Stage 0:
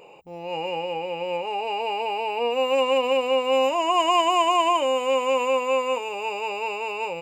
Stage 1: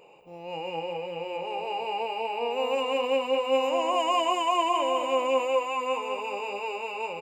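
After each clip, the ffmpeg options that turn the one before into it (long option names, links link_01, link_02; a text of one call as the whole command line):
ffmpeg -i in.wav -filter_complex "[0:a]asplit=2[link_01][link_02];[link_02]adelay=209,lowpass=frequency=3500:poles=1,volume=-4dB,asplit=2[link_03][link_04];[link_04]adelay=209,lowpass=frequency=3500:poles=1,volume=0.54,asplit=2[link_05][link_06];[link_06]adelay=209,lowpass=frequency=3500:poles=1,volume=0.54,asplit=2[link_07][link_08];[link_08]adelay=209,lowpass=frequency=3500:poles=1,volume=0.54,asplit=2[link_09][link_10];[link_10]adelay=209,lowpass=frequency=3500:poles=1,volume=0.54,asplit=2[link_11][link_12];[link_12]adelay=209,lowpass=frequency=3500:poles=1,volume=0.54,asplit=2[link_13][link_14];[link_14]adelay=209,lowpass=frequency=3500:poles=1,volume=0.54[link_15];[link_01][link_03][link_05][link_07][link_09][link_11][link_13][link_15]amix=inputs=8:normalize=0,volume=-6dB" out.wav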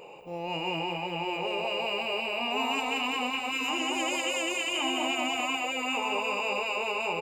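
ffmpeg -i in.wav -af "afftfilt=real='re*lt(hypot(re,im),0.126)':imag='im*lt(hypot(re,im),0.126)':win_size=1024:overlap=0.75,volume=7dB" out.wav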